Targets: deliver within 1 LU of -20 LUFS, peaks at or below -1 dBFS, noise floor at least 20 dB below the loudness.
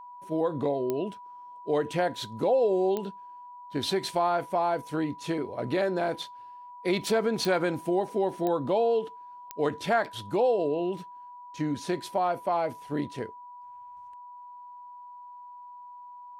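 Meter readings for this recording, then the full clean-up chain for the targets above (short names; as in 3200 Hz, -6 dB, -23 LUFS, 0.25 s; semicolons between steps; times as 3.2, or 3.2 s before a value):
clicks 5; steady tone 980 Hz; tone level -43 dBFS; loudness -28.5 LUFS; peak -13.5 dBFS; loudness target -20.0 LUFS
-> de-click; notch 980 Hz, Q 30; gain +8.5 dB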